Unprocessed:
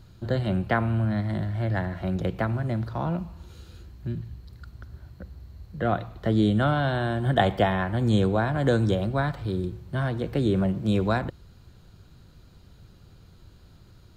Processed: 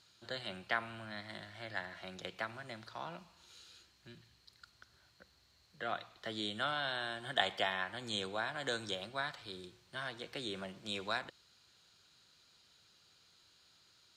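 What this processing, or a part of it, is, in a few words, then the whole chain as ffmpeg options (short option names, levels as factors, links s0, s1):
piezo pickup straight into a mixer: -af "lowpass=5300,aderivative,volume=2.11"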